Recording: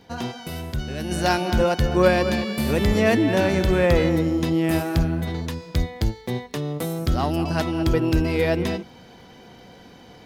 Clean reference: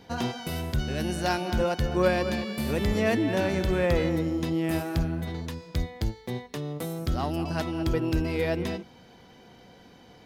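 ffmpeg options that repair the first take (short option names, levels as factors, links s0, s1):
-af "adeclick=t=4,asetnsamples=n=441:p=0,asendcmd='1.11 volume volume -6dB',volume=1"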